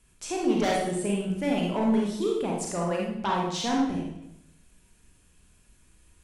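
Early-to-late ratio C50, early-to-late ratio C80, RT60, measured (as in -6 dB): 1.0 dB, 4.5 dB, 0.80 s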